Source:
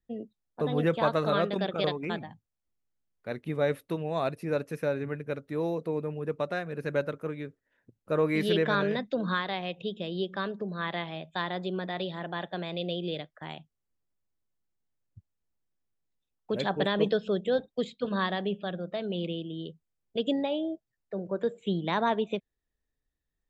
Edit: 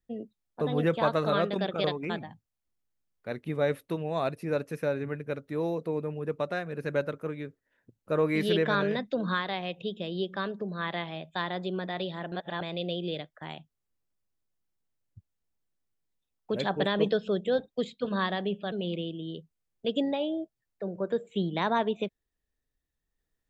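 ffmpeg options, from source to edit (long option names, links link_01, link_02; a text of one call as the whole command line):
ffmpeg -i in.wav -filter_complex "[0:a]asplit=4[link_01][link_02][link_03][link_04];[link_01]atrim=end=12.322[link_05];[link_02]atrim=start=12.318:end=12.612,asetpts=PTS-STARTPTS,areverse[link_06];[link_03]atrim=start=12.608:end=18.722[link_07];[link_04]atrim=start=19.028[link_08];[link_05][link_06]acrossfade=duration=0.004:curve1=hsin:curve2=hsin[link_09];[link_09][link_07]acrossfade=duration=0.004:curve1=hsin:curve2=hsin[link_10];[link_10][link_08]acrossfade=duration=0.004:curve1=hsin:curve2=hsin" out.wav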